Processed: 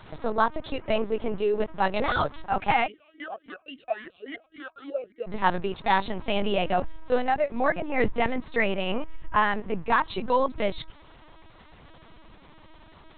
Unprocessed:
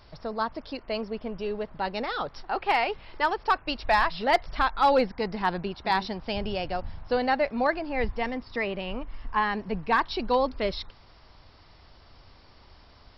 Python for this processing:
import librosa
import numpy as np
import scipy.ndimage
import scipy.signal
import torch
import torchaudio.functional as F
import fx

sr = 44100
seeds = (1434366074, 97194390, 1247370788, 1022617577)

y = fx.rider(x, sr, range_db=4, speed_s=0.5)
y = fx.lpc_vocoder(y, sr, seeds[0], excitation='pitch_kept', order=10)
y = fx.vowel_sweep(y, sr, vowels='a-i', hz=3.6, at=(2.86, 5.26), fade=0.02)
y = y * librosa.db_to_amplitude(2.5)